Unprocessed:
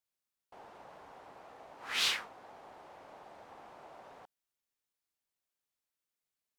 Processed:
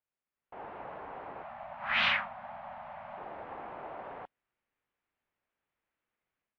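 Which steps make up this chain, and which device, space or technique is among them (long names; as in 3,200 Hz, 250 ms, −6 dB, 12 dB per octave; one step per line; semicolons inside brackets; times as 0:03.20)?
0:01.43–0:03.18: Chebyshev band-stop filter 240–570 Hz, order 5
action camera in a waterproof case (low-pass filter 2,500 Hz 24 dB per octave; automatic gain control gain up to 10 dB; AAC 48 kbit/s 32,000 Hz)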